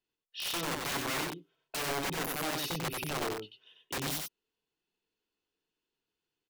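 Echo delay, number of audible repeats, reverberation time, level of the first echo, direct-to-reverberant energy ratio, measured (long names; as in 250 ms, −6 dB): 93 ms, 1, no reverb audible, −3.5 dB, no reverb audible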